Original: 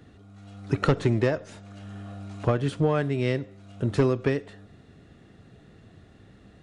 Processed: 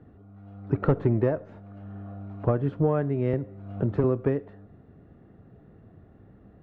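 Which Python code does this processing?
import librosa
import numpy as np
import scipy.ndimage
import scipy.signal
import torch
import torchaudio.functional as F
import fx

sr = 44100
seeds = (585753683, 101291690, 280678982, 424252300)

y = scipy.signal.sosfilt(scipy.signal.butter(2, 1100.0, 'lowpass', fs=sr, output='sos'), x)
y = fx.band_squash(y, sr, depth_pct=70, at=(3.33, 4.04))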